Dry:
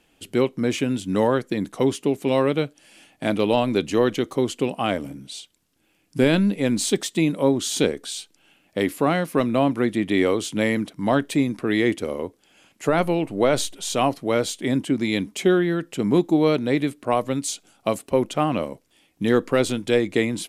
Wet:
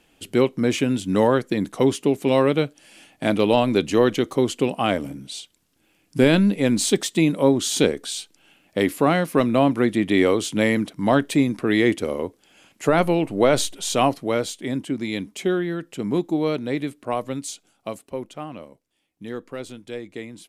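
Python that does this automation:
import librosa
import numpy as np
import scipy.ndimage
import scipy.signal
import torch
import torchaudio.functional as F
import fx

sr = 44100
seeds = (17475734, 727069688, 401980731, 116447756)

y = fx.gain(x, sr, db=fx.line((14.04, 2.0), (14.62, -4.0), (17.36, -4.0), (18.58, -13.5)))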